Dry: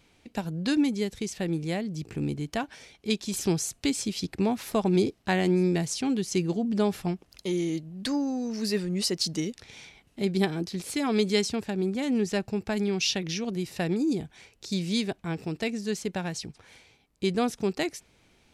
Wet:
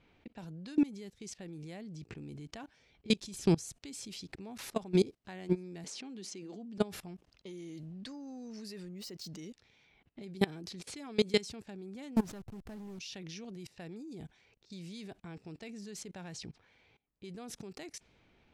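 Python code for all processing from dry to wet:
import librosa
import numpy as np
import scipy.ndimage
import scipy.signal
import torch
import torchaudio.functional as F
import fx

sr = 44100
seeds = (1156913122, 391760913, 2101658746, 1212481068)

y = fx.chain(x, sr, fx.steep_lowpass(hz=12000.0, slope=36),
    fx.low_shelf(hz=170.0, db=7.0), at=(2.73, 3.75))
y = fx.chain(y, sr, fx.brickwall_highpass(low_hz=180.0),
    fx.air_absorb(metres=52.0),
    fx.band_squash(depth_pct=40), at=(5.84, 6.78))
y = fx.chain(y, sr, fx.high_shelf(hz=3300.0, db=-4.0),
    fx.resample_bad(factor=2, down='filtered', up='hold'), at=(8.88, 9.39))
y = fx.chain(y, sr, fx.delta_hold(step_db=-35.5),
    fx.low_shelf(hz=370.0, db=9.5),
    fx.clip_hard(threshold_db=-20.0), at=(12.16, 12.99))
y = fx.env_lowpass(y, sr, base_hz=2700.0, full_db=-25.5)
y = fx.level_steps(y, sr, step_db=22)
y = y * 10.0 ** (-1.0 / 20.0)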